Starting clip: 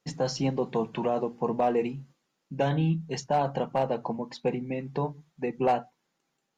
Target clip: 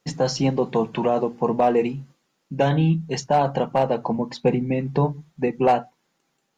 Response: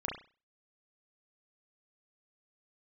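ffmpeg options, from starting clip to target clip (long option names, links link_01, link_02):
-filter_complex "[0:a]asettb=1/sr,asplit=3[link_01][link_02][link_03];[link_01]atrim=end=4.114[link_04];[link_02]atrim=start=4.11:end=5.48,asetpts=PTS-STARTPTS,afade=type=in:duration=0.004:curve=qsin,afade=type=out:start_time=1.366:duration=0.004:curve=qsin,lowshelf=frequency=240:gain=6.5[link_05];[link_03]atrim=start=5.476[link_06];[link_04][link_05]acrossfade=duration=0.004:curve1=hsin:curve2=qsin[link_07];[link_07][link_06]acrossfade=duration=0.004:curve1=qsin:curve2=hsin,volume=6.5dB"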